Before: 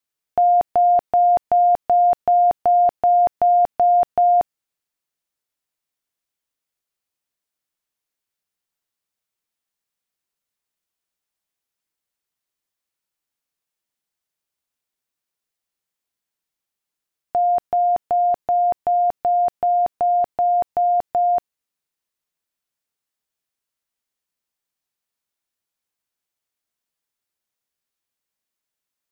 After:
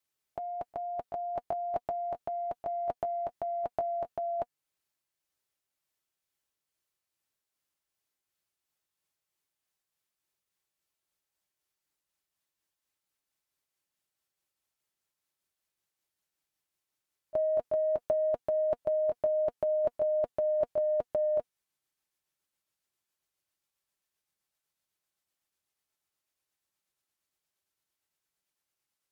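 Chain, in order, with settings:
pitch glide at a constant tempo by −3.5 semitones starting unshifted
compressor whose output falls as the input rises −23 dBFS, ratio −1
notch comb filter 240 Hz
level −6 dB

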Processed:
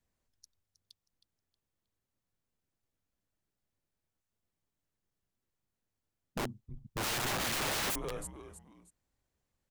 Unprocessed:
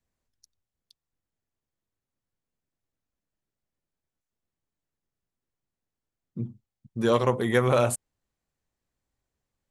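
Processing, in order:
brickwall limiter −16 dBFS, peak gain reduction 8 dB
echo with shifted repeats 316 ms, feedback 30%, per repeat −99 Hz, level −13 dB
wrap-around overflow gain 29 dB

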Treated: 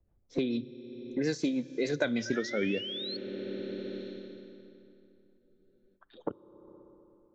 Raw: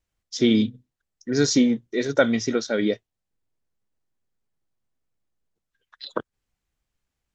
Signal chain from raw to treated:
source passing by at 0:02.27, 29 m/s, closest 12 metres
low-pass that shuts in the quiet parts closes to 680 Hz, open at −20.5 dBFS
rotating-speaker cabinet horn 6.7 Hz
sound drawn into the spectrogram rise, 0:02.25–0:03.17, 1,500–4,400 Hz −38 dBFS
on a send at −19 dB: convolution reverb RT60 2.8 s, pre-delay 3 ms
on the sum: frozen spectrum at 0:05.40, 0.56 s
multiband upward and downward compressor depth 100%
level −2.5 dB

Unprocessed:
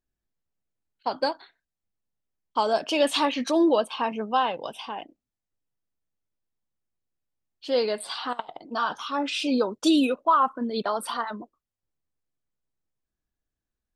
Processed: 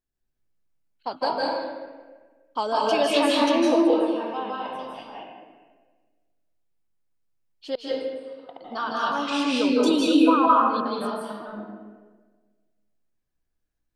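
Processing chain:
0:03.75–0:04.98: tuned comb filter 130 Hz, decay 0.93 s, harmonics all, mix 70%
0:07.75–0:08.49: gate with flip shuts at −27 dBFS, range −29 dB
0:10.57–0:11.30: fade out
convolution reverb RT60 1.4 s, pre-delay 151 ms, DRR −5 dB
level −3 dB

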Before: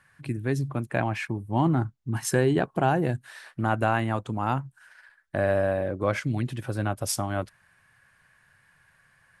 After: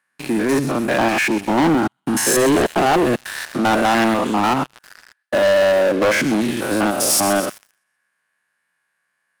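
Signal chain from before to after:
spectrum averaged block by block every 100 ms
high-pass filter 220 Hz 24 dB per octave
high-shelf EQ 6,600 Hz +5.5 dB
delay with a high-pass on its return 127 ms, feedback 48%, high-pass 2,700 Hz, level −11 dB
leveller curve on the samples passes 5
level +1 dB

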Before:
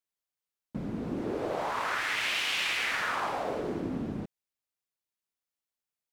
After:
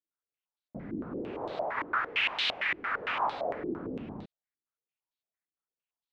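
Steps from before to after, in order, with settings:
0:01.77–0:03.29: leveller curve on the samples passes 1
low-pass on a step sequencer 8.8 Hz 330–3,900 Hz
level −7 dB

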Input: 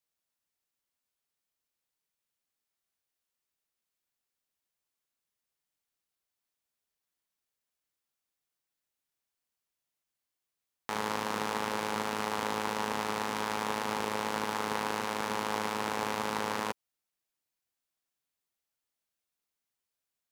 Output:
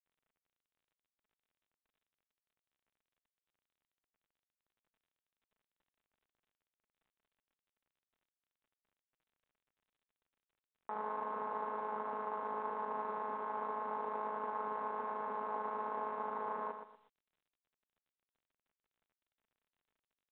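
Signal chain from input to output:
brickwall limiter −18 dBFS, peak gain reduction 3.5 dB
low-pass filter 1,000 Hz 24 dB per octave
first difference
comb filter 4.6 ms, depth 77%
repeating echo 120 ms, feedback 26%, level −8 dB
level +15 dB
mu-law 64 kbit/s 8,000 Hz

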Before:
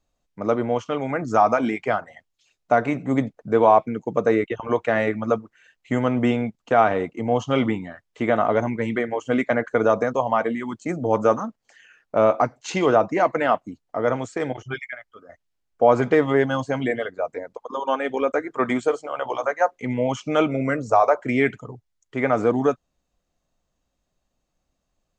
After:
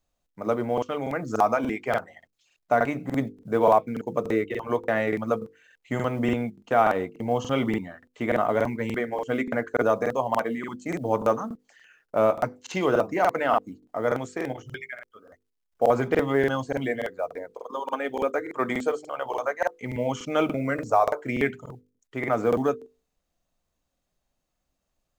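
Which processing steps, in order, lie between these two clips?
log-companded quantiser 8 bits
mains-hum notches 50/100/150/200/250/300/350/400/450/500 Hz
regular buffer underruns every 0.29 s, samples 2,048, repeat, from 0:00.73
level −3.5 dB

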